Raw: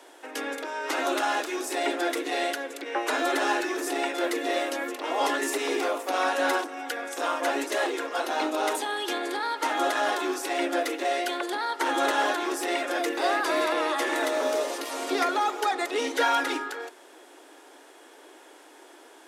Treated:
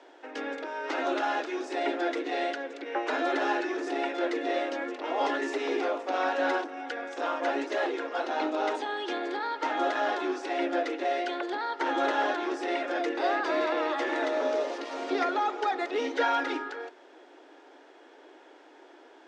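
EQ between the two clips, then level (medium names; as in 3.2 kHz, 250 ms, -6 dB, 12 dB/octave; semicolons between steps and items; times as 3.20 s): low-pass 6.1 kHz 24 dB/octave; peaking EQ 1.1 kHz -4 dB 0.25 oct; treble shelf 3 kHz -9.5 dB; -1.0 dB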